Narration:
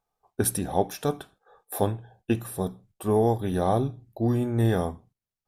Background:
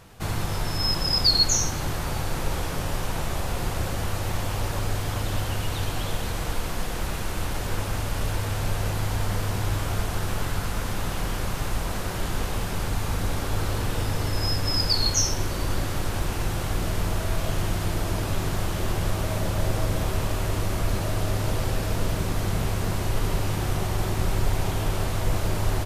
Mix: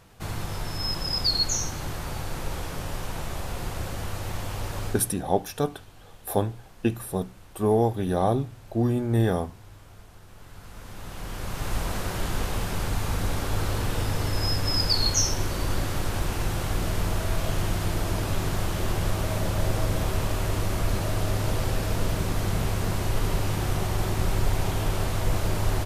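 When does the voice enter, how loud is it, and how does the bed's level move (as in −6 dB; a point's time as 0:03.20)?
4.55 s, +0.5 dB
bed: 0:04.88 −4.5 dB
0:05.20 −22 dB
0:10.28 −22 dB
0:11.76 −0.5 dB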